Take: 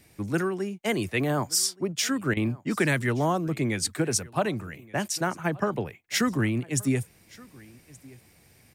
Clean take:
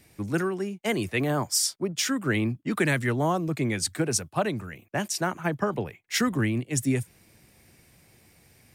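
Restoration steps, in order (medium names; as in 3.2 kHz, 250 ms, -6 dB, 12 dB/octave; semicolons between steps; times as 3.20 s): interpolate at 2.34 s, 27 ms; inverse comb 1174 ms -23.5 dB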